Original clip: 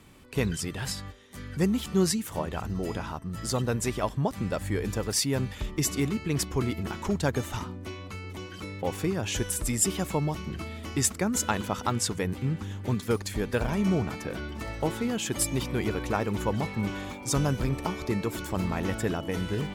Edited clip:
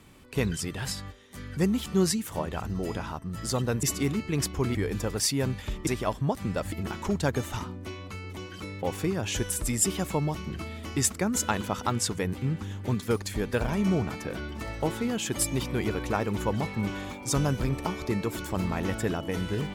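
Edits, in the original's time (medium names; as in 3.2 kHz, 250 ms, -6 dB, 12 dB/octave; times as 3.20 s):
3.83–4.68 s: swap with 5.80–6.72 s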